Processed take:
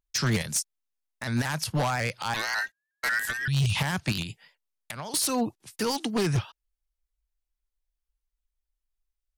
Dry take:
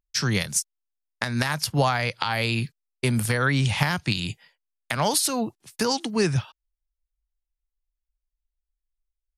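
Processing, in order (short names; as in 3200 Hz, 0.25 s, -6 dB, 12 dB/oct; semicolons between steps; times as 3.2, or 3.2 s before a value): 3.33–3.76 spectral gain 200–2400 Hz -23 dB; 4.22–5.14 compressor 20:1, threshold -33 dBFS, peak gain reduction 16 dB; limiter -14.5 dBFS, peak gain reduction 10 dB; 2.34–3.48 ring modulator 1700 Hz; wavefolder -19 dBFS; shaped vibrato saw up 5.5 Hz, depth 100 cents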